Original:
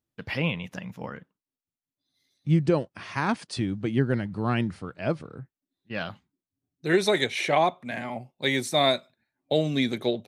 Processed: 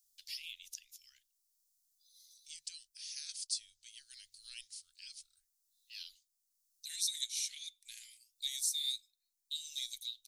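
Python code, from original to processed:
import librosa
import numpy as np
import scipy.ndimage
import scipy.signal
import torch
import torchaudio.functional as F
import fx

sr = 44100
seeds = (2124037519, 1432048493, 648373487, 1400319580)

y = scipy.signal.sosfilt(scipy.signal.cheby2(4, 80, [120.0, 990.0], 'bandstop', fs=sr, output='sos'), x)
y = fx.band_squash(y, sr, depth_pct=40)
y = y * 10.0 ** (6.5 / 20.0)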